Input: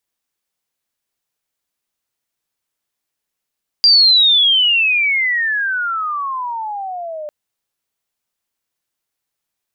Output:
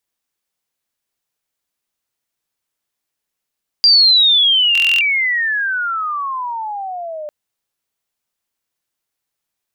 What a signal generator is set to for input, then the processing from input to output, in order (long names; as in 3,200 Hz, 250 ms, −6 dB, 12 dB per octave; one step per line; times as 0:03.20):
glide logarithmic 4,800 Hz → 590 Hz −6 dBFS → −24.5 dBFS 3.45 s
buffer that repeats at 0:04.73, samples 1,024, times 11